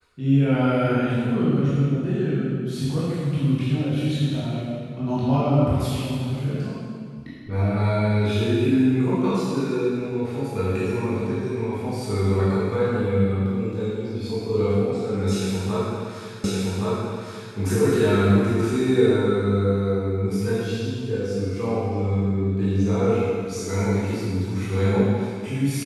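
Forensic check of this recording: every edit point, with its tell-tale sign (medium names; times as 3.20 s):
16.44 s: repeat of the last 1.12 s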